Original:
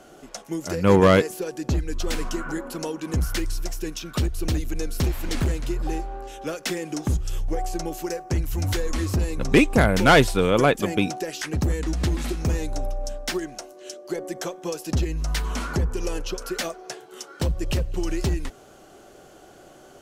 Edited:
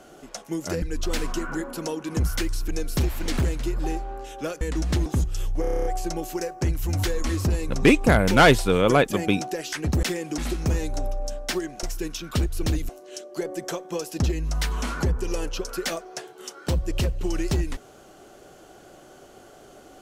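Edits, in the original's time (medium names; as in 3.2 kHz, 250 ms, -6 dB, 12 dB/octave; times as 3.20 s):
0.82–1.79 s: delete
3.65–4.71 s: move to 13.62 s
6.64–6.99 s: swap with 11.72–12.17 s
7.54 s: stutter 0.03 s, 9 plays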